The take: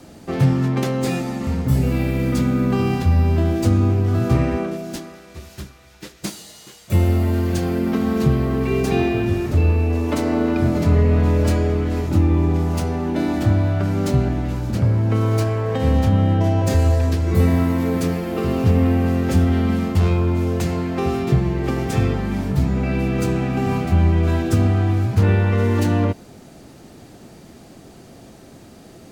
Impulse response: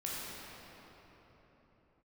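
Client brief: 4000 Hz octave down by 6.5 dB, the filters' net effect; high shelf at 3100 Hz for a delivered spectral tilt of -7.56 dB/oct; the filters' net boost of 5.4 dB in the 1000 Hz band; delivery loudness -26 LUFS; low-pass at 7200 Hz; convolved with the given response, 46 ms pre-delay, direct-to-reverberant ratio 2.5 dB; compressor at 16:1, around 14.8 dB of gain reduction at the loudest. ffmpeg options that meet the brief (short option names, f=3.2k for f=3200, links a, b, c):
-filter_complex "[0:a]lowpass=7.2k,equalizer=f=1k:t=o:g=8,highshelf=f=3.1k:g=-5,equalizer=f=4k:t=o:g=-5,acompressor=threshold=-26dB:ratio=16,asplit=2[a][b];[1:a]atrim=start_sample=2205,adelay=46[c];[b][c]afir=irnorm=-1:irlink=0,volume=-6dB[d];[a][d]amix=inputs=2:normalize=0,volume=1dB"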